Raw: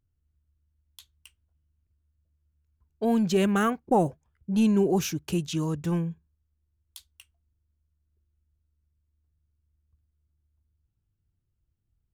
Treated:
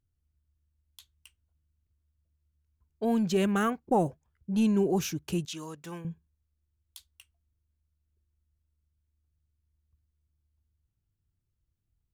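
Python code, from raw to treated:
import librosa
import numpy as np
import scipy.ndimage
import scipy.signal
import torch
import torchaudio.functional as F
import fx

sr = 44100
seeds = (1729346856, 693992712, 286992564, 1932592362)

y = fx.highpass(x, sr, hz=840.0, slope=6, at=(5.45, 6.05))
y = y * librosa.db_to_amplitude(-3.0)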